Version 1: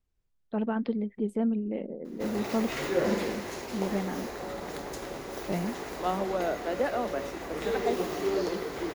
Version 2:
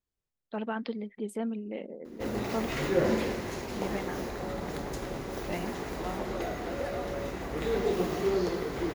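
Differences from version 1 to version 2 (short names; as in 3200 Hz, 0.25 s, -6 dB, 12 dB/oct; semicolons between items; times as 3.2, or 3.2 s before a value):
first voice: add tilt +3 dB/oct; second voice -10.0 dB; background: add tone controls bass +8 dB, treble -2 dB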